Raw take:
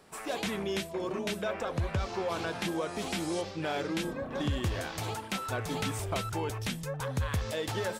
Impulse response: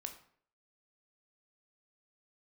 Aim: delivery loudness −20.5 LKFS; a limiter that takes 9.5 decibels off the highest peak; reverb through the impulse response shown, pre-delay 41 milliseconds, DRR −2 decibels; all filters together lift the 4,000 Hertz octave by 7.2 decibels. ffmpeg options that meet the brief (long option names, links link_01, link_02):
-filter_complex "[0:a]equalizer=frequency=4000:width_type=o:gain=9,alimiter=level_in=3dB:limit=-24dB:level=0:latency=1,volume=-3dB,asplit=2[link_01][link_02];[1:a]atrim=start_sample=2205,adelay=41[link_03];[link_02][link_03]afir=irnorm=-1:irlink=0,volume=5dB[link_04];[link_01][link_04]amix=inputs=2:normalize=0,volume=11.5dB"